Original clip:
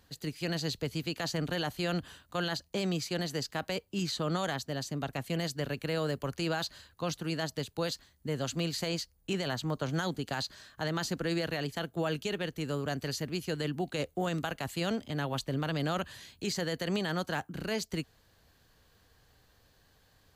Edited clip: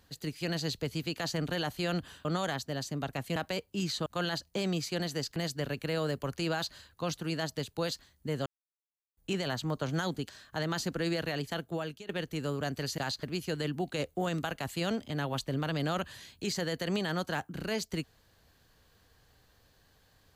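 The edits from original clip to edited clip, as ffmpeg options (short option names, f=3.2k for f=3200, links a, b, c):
-filter_complex "[0:a]asplit=11[a][b][c][d][e][f][g][h][i][j][k];[a]atrim=end=2.252[l];[b]atrim=start=4.248:end=5.362[m];[c]atrim=start=3.548:end=4.252[n];[d]atrim=start=2.248:end=3.552[o];[e]atrim=start=5.358:end=8.46,asetpts=PTS-STARTPTS,afade=t=out:st=3.098:d=0.004:c=hsin[p];[f]atrim=start=8.46:end=9.17,asetpts=PTS-STARTPTS,volume=0[q];[g]atrim=start=9.17:end=10.292,asetpts=PTS-STARTPTS,afade=t=in:d=0.004:c=hsin[r];[h]atrim=start=10.538:end=12.34,asetpts=PTS-STARTPTS,afade=t=out:st=1.322:d=0.48:silence=0.105925[s];[i]atrim=start=12.34:end=13.232,asetpts=PTS-STARTPTS,afade=t=in:d=0.004:c=hsin:silence=0.105925[t];[j]atrim=start=10.288:end=10.542[u];[k]atrim=start=13.228[v];[l][m]acrossfade=d=0.004:c1=hsin:c2=hsin[w];[w][n]acrossfade=d=0.004:c1=hsin:c2=hsin[x];[x][o]acrossfade=d=0.004:c1=hsin:c2=hsin[y];[p][q][r]concat=n=3:v=0:a=1[z];[y][z]acrossfade=d=0.004:c1=hsin:c2=hsin[aa];[s][t]concat=n=2:v=0:a=1[ab];[aa][ab]acrossfade=d=0.004:c1=hsin:c2=hsin[ac];[ac][u]acrossfade=d=0.004:c1=hsin:c2=hsin[ad];[ad][v]acrossfade=d=0.004:c1=hsin:c2=hsin"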